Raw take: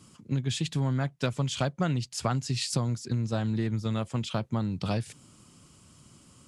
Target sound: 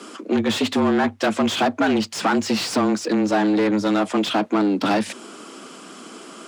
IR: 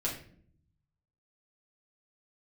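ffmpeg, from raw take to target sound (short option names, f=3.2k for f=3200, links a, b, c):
-filter_complex "[0:a]asplit=2[a][b];[b]highpass=f=720:p=1,volume=28dB,asoftclip=type=tanh:threshold=-14dB[c];[a][c]amix=inputs=2:normalize=0,lowpass=f=1.4k:p=1,volume=-6dB,afreqshift=98,volume=4.5dB"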